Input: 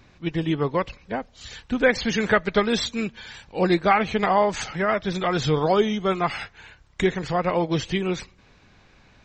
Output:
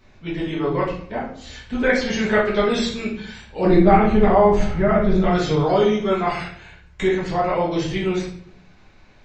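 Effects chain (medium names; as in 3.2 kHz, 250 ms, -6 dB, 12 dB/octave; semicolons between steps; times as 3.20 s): 3.65–5.25 s: tilt EQ -3.5 dB/octave; simulated room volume 100 m³, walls mixed, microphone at 1.5 m; trim -5.5 dB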